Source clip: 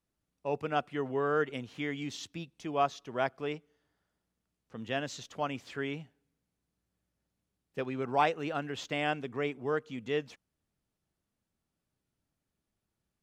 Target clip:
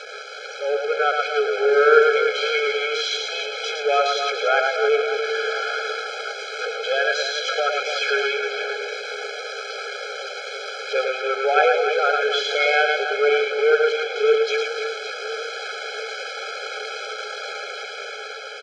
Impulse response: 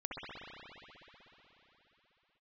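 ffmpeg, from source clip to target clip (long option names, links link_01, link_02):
-af "aeval=exprs='val(0)+0.5*0.0398*sgn(val(0))':channel_layout=same,dynaudnorm=framelen=230:gausssize=7:maxgain=4.5dB,atempo=0.71,highpass=frequency=320:width=0.5412,highpass=frequency=320:width=1.3066,equalizer=frequency=360:width_type=q:width=4:gain=5,equalizer=frequency=680:width_type=q:width=4:gain=-8,equalizer=frequency=1300:width_type=q:width=4:gain=4,equalizer=frequency=1900:width_type=q:width=4:gain=7,lowpass=frequency=4900:width=0.5412,lowpass=frequency=4900:width=1.3066,aecho=1:1:110|286|567.6|1018|1739:0.631|0.398|0.251|0.158|0.1,afftfilt=real='re*eq(mod(floor(b*sr/1024/430),2),1)':imag='im*eq(mod(floor(b*sr/1024/430),2),1)':win_size=1024:overlap=0.75,volume=6dB"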